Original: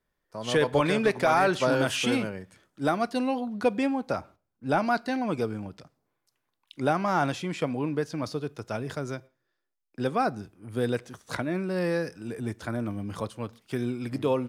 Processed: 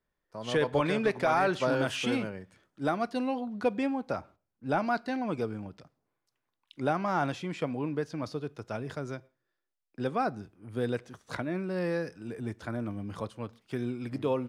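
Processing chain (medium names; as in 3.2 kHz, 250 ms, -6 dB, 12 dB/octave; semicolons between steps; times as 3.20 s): treble shelf 6.6 kHz -8.5 dB; trim -3.5 dB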